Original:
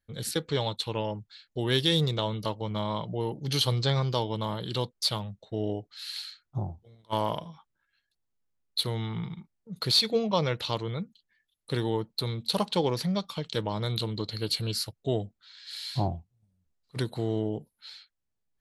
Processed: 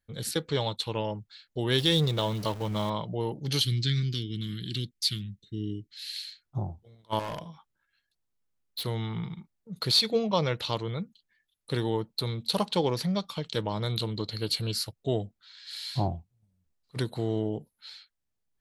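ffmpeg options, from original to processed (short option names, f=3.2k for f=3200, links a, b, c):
-filter_complex "[0:a]asettb=1/sr,asplit=3[a][b][c];[a]atrim=end=1.784[d];[b]atrim=start=1.78:end=2.9,asetpts=PTS-STARTPTS,afade=t=in:d=0.004:c=qsin,afade=t=out:st=1.116:d=0.004:c=qsin,aeval=exprs='val(0)+0.5*0.0133*sgn(val(0))':c=same[e];[c]atrim=start=2.896[f];[d][e]acrossfade=d=0.004:c1=hsin:c2=qsin[g];[g][f]acrossfade=d=0.004:c1=qsin:c2=hsin,asettb=1/sr,asplit=3[h][i][j];[h]atrim=end=3.614[k];[i]atrim=start=3.61:end=6.43,asetpts=PTS-STARTPTS,afade=t=in:d=0.004:c=qsin,afade=t=out:st=2.816:d=0.004:c=qsin,asuperstop=centerf=760:order=8:qfactor=0.56[l];[j]atrim=start=6.426[m];[k][l]acrossfade=d=0.004:c1=hsin:c2=qsin[n];[n][m]acrossfade=d=0.004:c1=qsin:c2=hsin,asettb=1/sr,asplit=3[o][p][q];[o]atrim=end=7.194[r];[p]atrim=start=7.19:end=8.84,asetpts=PTS-STARTPTS,afade=t=in:d=0.004:c=qsin,afade=t=out:st=1.646:d=0.004:c=qsin,volume=31dB,asoftclip=hard,volume=-31dB[s];[q]atrim=start=8.836[t];[r][s]acrossfade=d=0.004:c1=hsin:c2=qsin[u];[u][t]acrossfade=d=0.004:c1=qsin:c2=hsin"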